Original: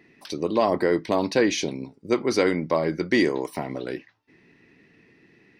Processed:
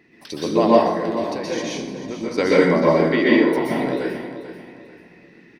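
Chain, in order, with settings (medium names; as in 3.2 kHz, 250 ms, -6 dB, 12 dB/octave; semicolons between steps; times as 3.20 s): 0.67–2.38 s: compression, threshold -30 dBFS, peak gain reduction 14 dB; 2.93–3.53 s: elliptic band-pass 240–3700 Hz; feedback delay 440 ms, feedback 34%, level -12 dB; reverberation RT60 0.85 s, pre-delay 112 ms, DRR -6 dB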